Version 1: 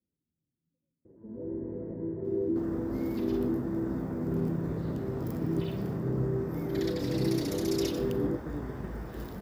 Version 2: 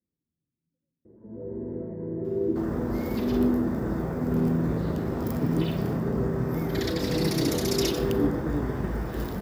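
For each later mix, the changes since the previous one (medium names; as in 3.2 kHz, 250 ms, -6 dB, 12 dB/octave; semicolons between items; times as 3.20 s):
first sound: send on; second sound +8.5 dB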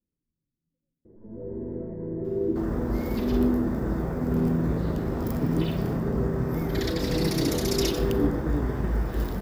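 master: remove high-pass 74 Hz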